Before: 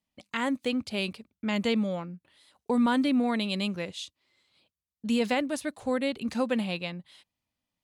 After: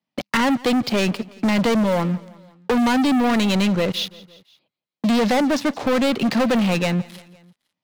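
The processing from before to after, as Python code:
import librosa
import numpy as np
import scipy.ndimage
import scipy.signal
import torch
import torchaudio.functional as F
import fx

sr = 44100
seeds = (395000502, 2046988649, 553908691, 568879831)

p1 = scipy.signal.sosfilt(scipy.signal.ellip(3, 1.0, 40, [130.0, 5500.0], 'bandpass', fs=sr, output='sos'), x)
p2 = fx.high_shelf(p1, sr, hz=3100.0, db=-5.5)
p3 = fx.rider(p2, sr, range_db=5, speed_s=2.0)
p4 = p2 + (p3 * 10.0 ** (0.0 / 20.0))
p5 = fx.leveller(p4, sr, passes=5)
p6 = p5 + fx.echo_feedback(p5, sr, ms=170, feedback_pct=46, wet_db=-23.0, dry=0)
p7 = fx.band_squash(p6, sr, depth_pct=40)
y = p7 * 10.0 ** (-6.0 / 20.0)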